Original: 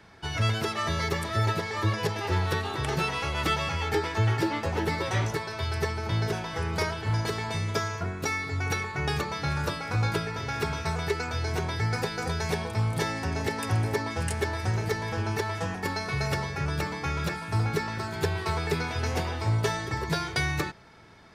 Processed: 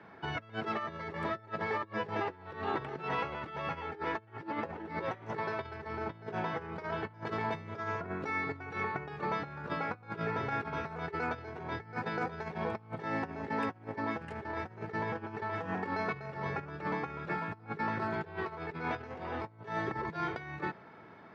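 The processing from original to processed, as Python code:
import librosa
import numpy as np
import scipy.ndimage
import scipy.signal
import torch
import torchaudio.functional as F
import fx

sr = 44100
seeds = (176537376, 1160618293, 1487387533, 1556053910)

y = scipy.signal.sosfilt(scipy.signal.butter(2, 1800.0, 'lowpass', fs=sr, output='sos'), x)
y = fx.over_compress(y, sr, threshold_db=-33.0, ratio=-0.5)
y = scipy.signal.sosfilt(scipy.signal.butter(2, 170.0, 'highpass', fs=sr, output='sos'), y)
y = F.gain(torch.from_numpy(y), -2.0).numpy()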